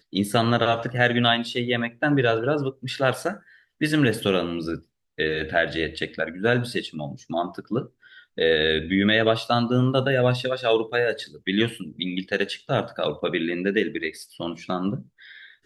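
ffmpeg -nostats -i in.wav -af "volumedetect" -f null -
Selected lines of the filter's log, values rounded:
mean_volume: -24.3 dB
max_volume: -5.0 dB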